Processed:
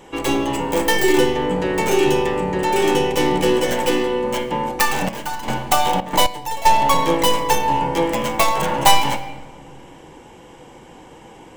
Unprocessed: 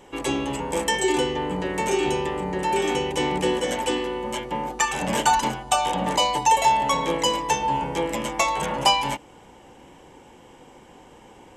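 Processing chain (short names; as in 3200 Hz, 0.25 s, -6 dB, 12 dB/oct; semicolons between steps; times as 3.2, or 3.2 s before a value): tracing distortion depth 0.23 ms; shoebox room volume 1100 m³, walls mixed, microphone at 0.65 m; 5.01–6.66 step gate "...xxxx.x...x" 115 bpm -12 dB; gain +5 dB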